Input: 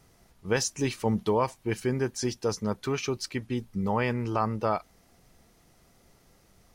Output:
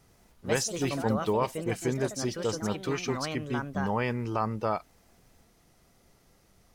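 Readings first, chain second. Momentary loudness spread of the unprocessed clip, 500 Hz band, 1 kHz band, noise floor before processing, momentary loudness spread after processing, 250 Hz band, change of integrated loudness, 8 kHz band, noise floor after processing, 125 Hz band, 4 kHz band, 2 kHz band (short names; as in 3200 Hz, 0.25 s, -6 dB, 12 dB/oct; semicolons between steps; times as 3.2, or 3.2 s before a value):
6 LU, -1.0 dB, -1.0 dB, -62 dBFS, 4 LU, -1.0 dB, -1.0 dB, -1.0 dB, -64 dBFS, -1.5 dB, -1.0 dB, 0.0 dB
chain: echoes that change speed 84 ms, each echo +4 st, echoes 2, each echo -6 dB; gain -2 dB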